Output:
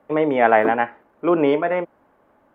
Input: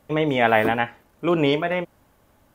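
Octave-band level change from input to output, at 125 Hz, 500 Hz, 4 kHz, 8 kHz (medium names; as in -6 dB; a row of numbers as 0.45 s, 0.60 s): -6.5 dB, +3.5 dB, -9.5 dB, no reading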